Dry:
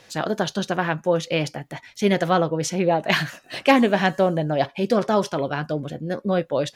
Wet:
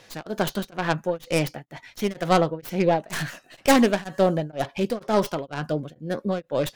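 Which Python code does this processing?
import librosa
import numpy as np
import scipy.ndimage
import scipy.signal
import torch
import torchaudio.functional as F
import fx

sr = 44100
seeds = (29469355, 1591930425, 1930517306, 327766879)

y = fx.tracing_dist(x, sr, depth_ms=0.4)
y = y * np.abs(np.cos(np.pi * 2.1 * np.arange(len(y)) / sr))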